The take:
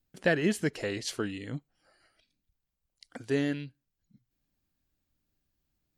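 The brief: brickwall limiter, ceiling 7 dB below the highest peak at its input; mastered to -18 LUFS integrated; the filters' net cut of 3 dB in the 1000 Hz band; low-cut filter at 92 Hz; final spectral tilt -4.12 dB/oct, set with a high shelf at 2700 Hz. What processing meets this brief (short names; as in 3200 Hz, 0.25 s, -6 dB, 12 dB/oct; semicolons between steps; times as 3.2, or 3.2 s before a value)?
HPF 92 Hz; bell 1000 Hz -6.5 dB; high shelf 2700 Hz +5.5 dB; gain +15.5 dB; limiter -5 dBFS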